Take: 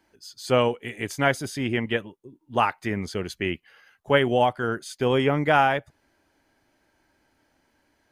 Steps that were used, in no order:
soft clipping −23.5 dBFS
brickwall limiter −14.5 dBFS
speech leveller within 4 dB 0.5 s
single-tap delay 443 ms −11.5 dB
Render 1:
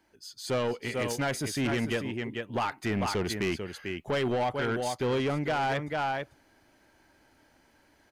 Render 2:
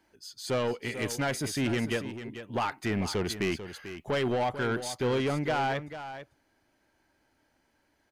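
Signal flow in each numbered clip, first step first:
single-tap delay, then speech leveller, then brickwall limiter, then soft clipping
speech leveller, then brickwall limiter, then soft clipping, then single-tap delay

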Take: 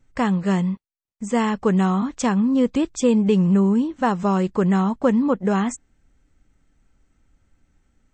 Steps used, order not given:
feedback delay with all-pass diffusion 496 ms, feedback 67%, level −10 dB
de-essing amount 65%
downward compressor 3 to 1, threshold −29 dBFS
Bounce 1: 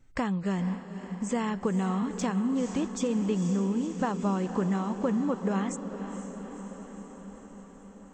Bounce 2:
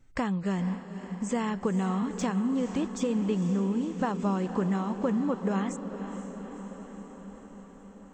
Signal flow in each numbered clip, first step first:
downward compressor, then feedback delay with all-pass diffusion, then de-essing
de-essing, then downward compressor, then feedback delay with all-pass diffusion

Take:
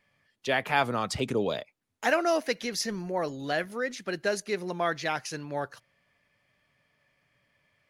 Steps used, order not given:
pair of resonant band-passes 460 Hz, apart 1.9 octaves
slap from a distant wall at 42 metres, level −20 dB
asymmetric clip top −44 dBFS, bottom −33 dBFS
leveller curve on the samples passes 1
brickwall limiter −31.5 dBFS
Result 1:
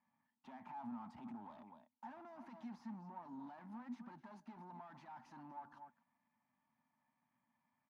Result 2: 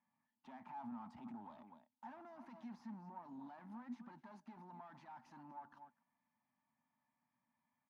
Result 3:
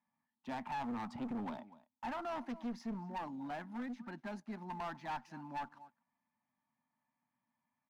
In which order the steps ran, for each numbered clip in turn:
slap from a distant wall, then brickwall limiter, then leveller curve on the samples, then asymmetric clip, then pair of resonant band-passes
slap from a distant wall, then leveller curve on the samples, then brickwall limiter, then asymmetric clip, then pair of resonant band-passes
pair of resonant band-passes, then brickwall limiter, then slap from a distant wall, then asymmetric clip, then leveller curve on the samples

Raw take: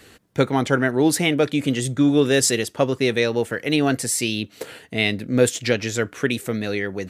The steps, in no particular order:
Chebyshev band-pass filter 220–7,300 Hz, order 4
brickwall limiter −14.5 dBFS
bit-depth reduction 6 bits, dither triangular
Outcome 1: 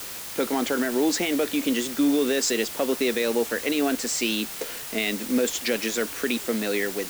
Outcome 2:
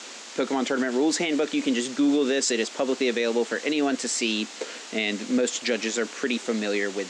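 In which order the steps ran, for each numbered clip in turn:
Chebyshev band-pass filter, then brickwall limiter, then bit-depth reduction
bit-depth reduction, then Chebyshev band-pass filter, then brickwall limiter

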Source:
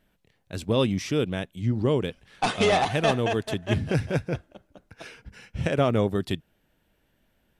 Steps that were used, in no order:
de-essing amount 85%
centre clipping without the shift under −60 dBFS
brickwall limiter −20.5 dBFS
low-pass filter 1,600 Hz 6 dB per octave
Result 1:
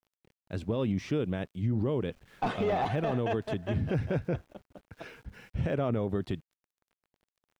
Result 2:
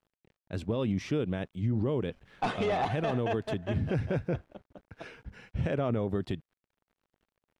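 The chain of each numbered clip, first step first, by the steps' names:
de-essing, then brickwall limiter, then low-pass filter, then centre clipping without the shift
centre clipping without the shift, then brickwall limiter, then low-pass filter, then de-essing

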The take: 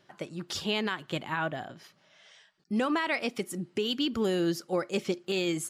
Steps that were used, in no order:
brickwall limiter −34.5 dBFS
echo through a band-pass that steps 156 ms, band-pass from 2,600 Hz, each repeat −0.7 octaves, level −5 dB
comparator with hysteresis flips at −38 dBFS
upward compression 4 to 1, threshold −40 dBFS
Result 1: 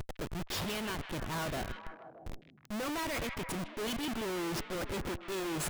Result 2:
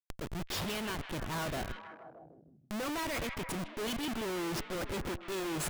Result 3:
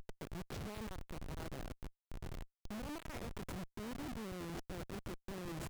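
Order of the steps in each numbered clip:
upward compression, then comparator with hysteresis, then brickwall limiter, then echo through a band-pass that steps
comparator with hysteresis, then brickwall limiter, then upward compression, then echo through a band-pass that steps
upward compression, then brickwall limiter, then echo through a band-pass that steps, then comparator with hysteresis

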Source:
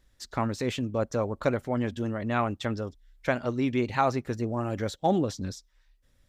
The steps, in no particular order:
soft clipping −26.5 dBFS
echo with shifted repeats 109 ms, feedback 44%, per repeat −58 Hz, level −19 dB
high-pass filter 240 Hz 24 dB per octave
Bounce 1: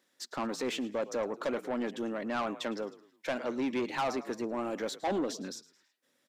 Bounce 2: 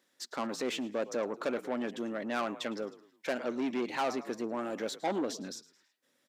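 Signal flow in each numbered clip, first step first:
echo with shifted repeats, then high-pass filter, then soft clipping
echo with shifted repeats, then soft clipping, then high-pass filter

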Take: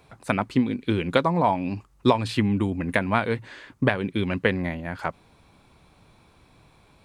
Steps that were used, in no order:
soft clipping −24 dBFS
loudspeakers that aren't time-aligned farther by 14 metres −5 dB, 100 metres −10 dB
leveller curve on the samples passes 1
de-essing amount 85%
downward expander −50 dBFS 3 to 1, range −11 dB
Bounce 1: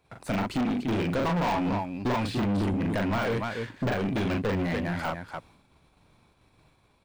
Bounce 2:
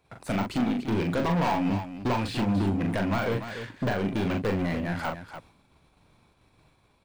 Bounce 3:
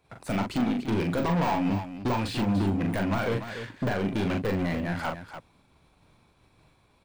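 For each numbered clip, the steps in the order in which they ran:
leveller curve on the samples, then loudspeakers that aren't time-aligned, then de-essing, then soft clipping, then downward expander
leveller curve on the samples, then de-essing, then soft clipping, then loudspeakers that aren't time-aligned, then downward expander
downward expander, then leveller curve on the samples, then soft clipping, then de-essing, then loudspeakers that aren't time-aligned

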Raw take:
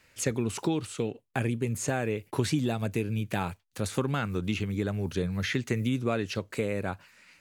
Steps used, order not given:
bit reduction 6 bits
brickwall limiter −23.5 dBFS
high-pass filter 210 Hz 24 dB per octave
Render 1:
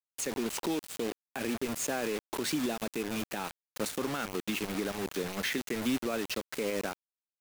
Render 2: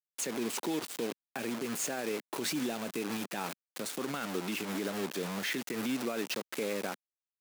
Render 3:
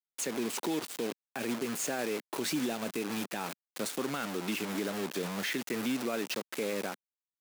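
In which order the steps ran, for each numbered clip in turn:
high-pass filter, then bit reduction, then brickwall limiter
bit reduction, then brickwall limiter, then high-pass filter
bit reduction, then high-pass filter, then brickwall limiter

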